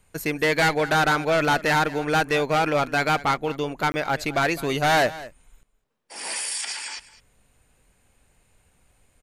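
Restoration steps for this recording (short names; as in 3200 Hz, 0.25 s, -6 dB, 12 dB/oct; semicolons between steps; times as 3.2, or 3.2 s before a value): interpolate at 3.92, 20 ms; inverse comb 0.207 s -17.5 dB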